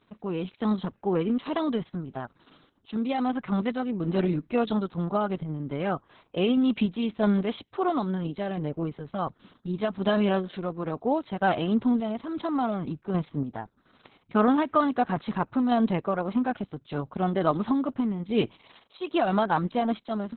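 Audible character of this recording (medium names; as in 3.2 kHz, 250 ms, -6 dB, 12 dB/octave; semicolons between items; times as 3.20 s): random-step tremolo; Opus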